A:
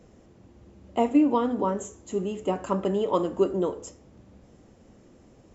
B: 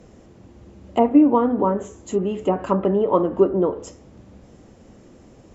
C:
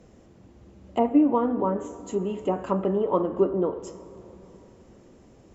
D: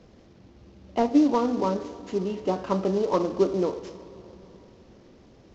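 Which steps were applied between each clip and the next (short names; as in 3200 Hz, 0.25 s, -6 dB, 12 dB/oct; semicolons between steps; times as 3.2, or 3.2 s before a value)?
treble ducked by the level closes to 1500 Hz, closed at -22.5 dBFS; gain +6.5 dB
plate-style reverb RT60 3.6 s, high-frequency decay 0.55×, DRR 14 dB; gain -5.5 dB
CVSD 32 kbps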